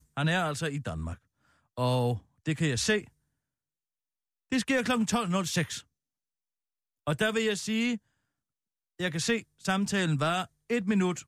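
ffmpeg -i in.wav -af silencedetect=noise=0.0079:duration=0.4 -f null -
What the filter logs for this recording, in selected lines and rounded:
silence_start: 1.15
silence_end: 1.78 | silence_duration: 0.63
silence_start: 3.04
silence_end: 4.52 | silence_duration: 1.48
silence_start: 5.81
silence_end: 7.07 | silence_duration: 1.26
silence_start: 7.97
silence_end: 8.99 | silence_duration: 1.02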